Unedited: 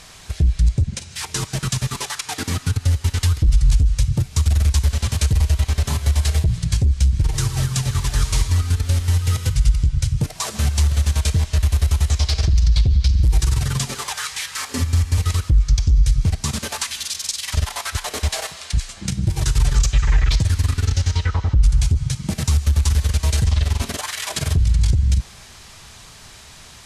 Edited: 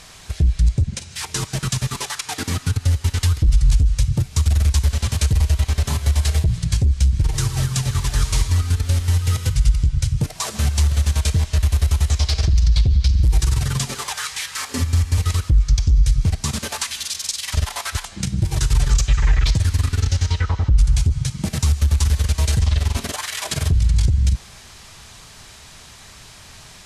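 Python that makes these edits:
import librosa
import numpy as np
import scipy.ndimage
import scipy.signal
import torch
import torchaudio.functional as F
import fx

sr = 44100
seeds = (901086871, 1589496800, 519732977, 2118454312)

y = fx.edit(x, sr, fx.cut(start_s=18.05, length_s=0.85), tone=tone)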